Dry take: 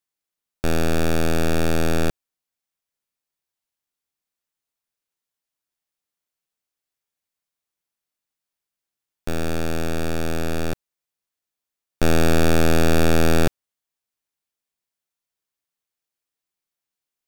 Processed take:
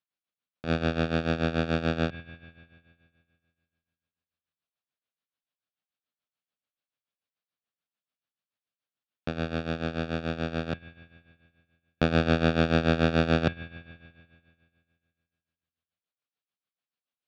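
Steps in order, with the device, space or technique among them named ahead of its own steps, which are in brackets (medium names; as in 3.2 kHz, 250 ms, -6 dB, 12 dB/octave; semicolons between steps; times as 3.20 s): combo amplifier with spring reverb and tremolo (spring tank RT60 2.2 s, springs 48 ms, chirp 55 ms, DRR 10.5 dB; tremolo 6.9 Hz, depth 77%; cabinet simulation 98–4000 Hz, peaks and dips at 370 Hz -8 dB, 900 Hz -6 dB, 2 kHz -5 dB); trim +1 dB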